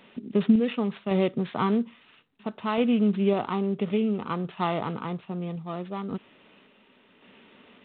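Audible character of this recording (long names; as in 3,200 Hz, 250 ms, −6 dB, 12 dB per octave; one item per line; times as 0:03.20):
a buzz of ramps at a fixed pitch in blocks of 8 samples
sample-and-hold tremolo 1.8 Hz
mu-law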